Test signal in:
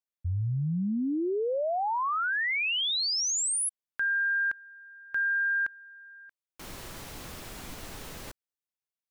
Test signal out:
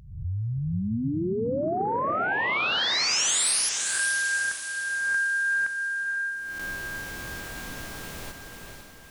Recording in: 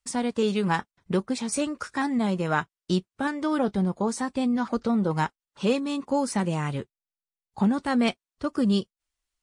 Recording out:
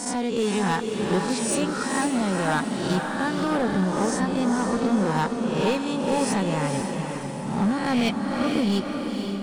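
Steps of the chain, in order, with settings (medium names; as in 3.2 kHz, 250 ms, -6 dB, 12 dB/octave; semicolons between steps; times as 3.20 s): reverse spectral sustain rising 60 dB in 0.77 s; overload inside the chain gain 18 dB; echo that smears into a reverb 492 ms, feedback 49%, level -4.5 dB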